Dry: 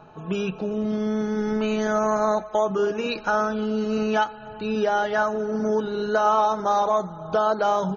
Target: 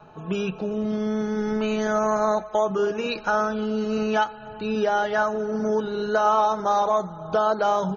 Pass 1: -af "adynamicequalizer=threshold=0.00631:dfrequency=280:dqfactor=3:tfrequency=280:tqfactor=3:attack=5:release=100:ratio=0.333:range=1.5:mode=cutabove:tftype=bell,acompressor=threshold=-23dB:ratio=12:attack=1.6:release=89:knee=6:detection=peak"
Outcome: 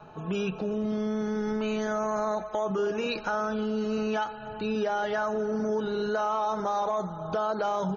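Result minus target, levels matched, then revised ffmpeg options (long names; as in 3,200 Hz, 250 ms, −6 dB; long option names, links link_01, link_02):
downward compressor: peak gain reduction +10 dB
-af "adynamicequalizer=threshold=0.00631:dfrequency=280:dqfactor=3:tfrequency=280:tqfactor=3:attack=5:release=100:ratio=0.333:range=1.5:mode=cutabove:tftype=bell"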